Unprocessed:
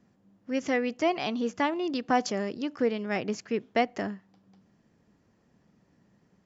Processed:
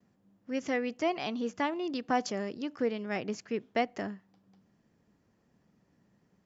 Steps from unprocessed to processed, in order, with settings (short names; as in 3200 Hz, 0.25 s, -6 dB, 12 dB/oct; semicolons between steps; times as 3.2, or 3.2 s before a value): gate with hold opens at -59 dBFS; gain -4 dB